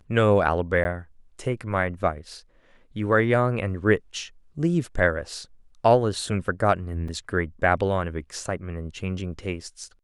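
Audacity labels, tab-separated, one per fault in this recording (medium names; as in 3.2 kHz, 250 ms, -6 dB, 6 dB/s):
0.840000	0.850000	dropout 10 ms
7.080000	7.080000	dropout 4.2 ms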